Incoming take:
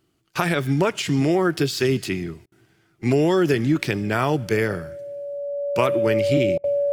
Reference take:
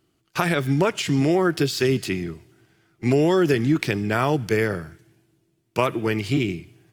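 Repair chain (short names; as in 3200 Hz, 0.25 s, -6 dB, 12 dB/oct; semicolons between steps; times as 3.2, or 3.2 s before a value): notch 570 Hz, Q 30; interpolate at 2.46/6.58, 58 ms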